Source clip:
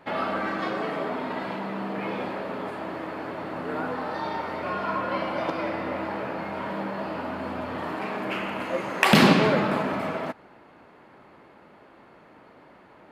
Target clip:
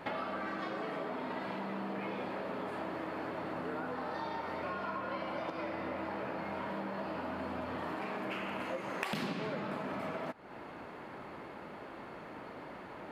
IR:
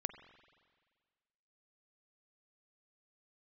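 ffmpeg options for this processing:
-af "acompressor=threshold=-42dB:ratio=6,volume=5dB"

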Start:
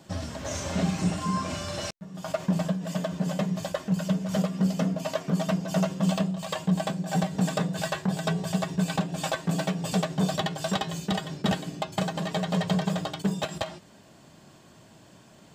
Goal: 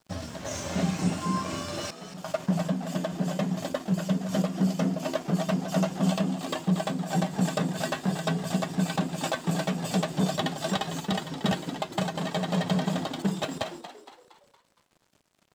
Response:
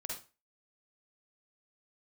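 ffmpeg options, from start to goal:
-filter_complex "[0:a]highpass=90,aeval=exprs='sgn(val(0))*max(abs(val(0))-0.00376,0)':channel_layout=same,asplit=2[link_01][link_02];[link_02]asplit=5[link_03][link_04][link_05][link_06][link_07];[link_03]adelay=232,afreqshift=76,volume=-11.5dB[link_08];[link_04]adelay=464,afreqshift=152,volume=-18.1dB[link_09];[link_05]adelay=696,afreqshift=228,volume=-24.6dB[link_10];[link_06]adelay=928,afreqshift=304,volume=-31.2dB[link_11];[link_07]adelay=1160,afreqshift=380,volume=-37.7dB[link_12];[link_08][link_09][link_10][link_11][link_12]amix=inputs=5:normalize=0[link_13];[link_01][link_13]amix=inputs=2:normalize=0"

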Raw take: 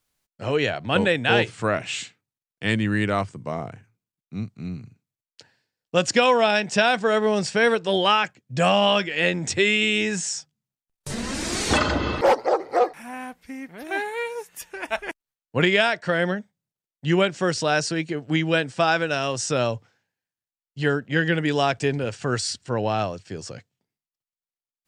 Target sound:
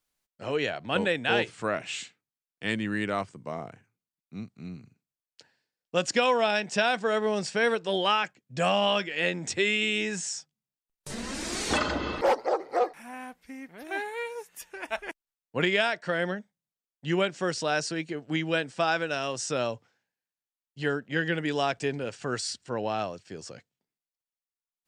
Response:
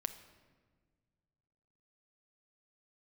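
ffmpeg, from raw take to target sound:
-af "equalizer=frequency=100:width=1.3:gain=-8,volume=-5.5dB"

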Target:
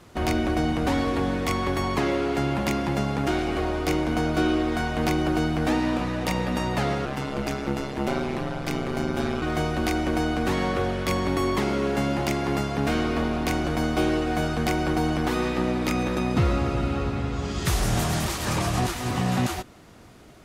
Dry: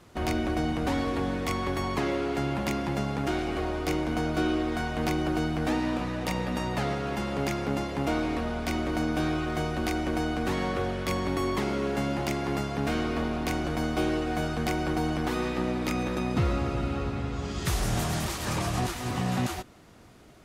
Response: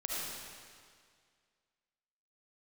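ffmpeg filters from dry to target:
-filter_complex "[0:a]asettb=1/sr,asplit=3[link_01][link_02][link_03];[link_01]atrim=end=7.054[link_04];[link_02]atrim=start=7.05:end=9.42,asetpts=PTS-STARTPTS,afade=type=in:duration=0.004:curve=qsin,afade=type=out:start_time=2.366:duration=0.004:curve=qsin,aeval=exprs='val(0)*sin(2*PI*67*n/s)':channel_layout=same[link_05];[link_03]atrim=start=9.416[link_06];[link_04][link_05]acrossfade=duration=0.004:curve1=hsin:curve2=qsin[link_07];[link_07][link_06]acrossfade=duration=0.004:curve1=qsin:curve2=hsin,volume=4dB"

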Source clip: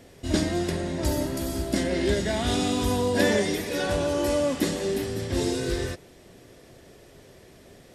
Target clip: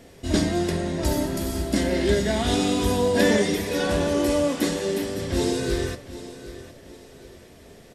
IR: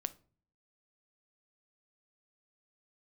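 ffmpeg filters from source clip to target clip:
-filter_complex "[0:a]asettb=1/sr,asplit=3[link_01][link_02][link_03];[link_01]atrim=end=4.474[link_04];[link_02]atrim=start=4.47:end=5.18,asetpts=PTS-STARTPTS,afade=type=in:duration=0.004:curve=qsin,afade=type=out:start_time=0.706:duration=0.004:curve=qsin,highpass=frequency=180:poles=1[link_05];[link_03]atrim=start=5.176[link_06];[link_04][link_05]acrossfade=duration=0.004:curve1=hsin:curve2=qsin[link_07];[link_07][link_06]acrossfade=duration=0.004:curve1=qsin:curve2=hsin,aecho=1:1:763|1526|2289:0.178|0.0605|0.0206[link_08];[1:a]atrim=start_sample=2205,asetrate=66150,aresample=44100[link_09];[link_08][link_09]afir=irnorm=-1:irlink=0,volume=6.5dB"

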